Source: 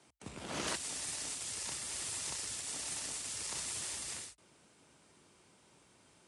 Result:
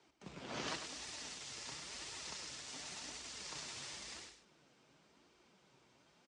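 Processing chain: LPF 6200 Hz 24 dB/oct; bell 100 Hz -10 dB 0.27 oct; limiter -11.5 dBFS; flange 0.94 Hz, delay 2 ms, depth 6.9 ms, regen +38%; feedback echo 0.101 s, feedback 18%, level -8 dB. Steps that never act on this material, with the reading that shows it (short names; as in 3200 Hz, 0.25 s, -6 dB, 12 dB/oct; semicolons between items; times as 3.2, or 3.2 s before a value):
limiter -11.5 dBFS: input peak -19.5 dBFS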